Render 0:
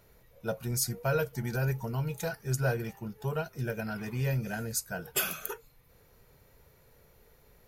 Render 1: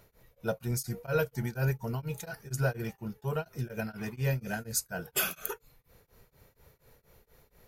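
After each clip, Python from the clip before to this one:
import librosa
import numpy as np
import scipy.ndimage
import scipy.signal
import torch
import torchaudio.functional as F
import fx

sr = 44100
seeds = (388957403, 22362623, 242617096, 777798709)

y = x * np.abs(np.cos(np.pi * 4.2 * np.arange(len(x)) / sr))
y = F.gain(torch.from_numpy(y), 2.0).numpy()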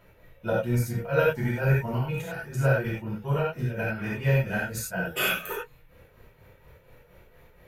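y = fx.high_shelf_res(x, sr, hz=3800.0, db=-9.0, q=1.5)
y = fx.rev_gated(y, sr, seeds[0], gate_ms=120, shape='flat', drr_db=-6.5)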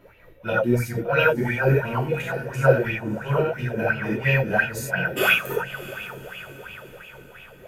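y = fx.echo_diffused(x, sr, ms=620, feedback_pct=55, wet_db=-13.5)
y = fx.bell_lfo(y, sr, hz=2.9, low_hz=270.0, high_hz=2800.0, db=16)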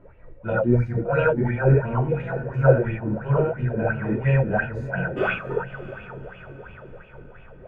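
y = scipy.signal.sosfilt(scipy.signal.butter(2, 1300.0, 'lowpass', fs=sr, output='sos'), x)
y = fx.low_shelf(y, sr, hz=87.0, db=11.5)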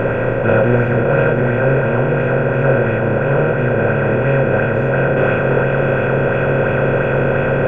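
y = fx.bin_compress(x, sr, power=0.2)
y = fx.rider(y, sr, range_db=10, speed_s=2.0)
y = F.gain(torch.from_numpy(y), -2.5).numpy()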